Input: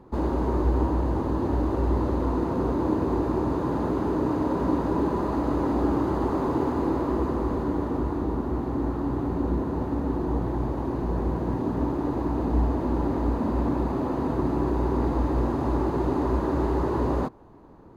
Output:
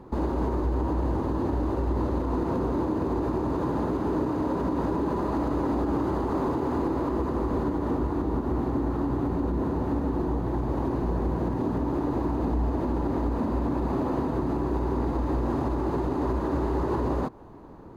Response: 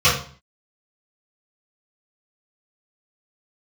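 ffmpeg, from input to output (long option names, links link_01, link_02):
-af "alimiter=limit=-22.5dB:level=0:latency=1:release=135,volume=4dB"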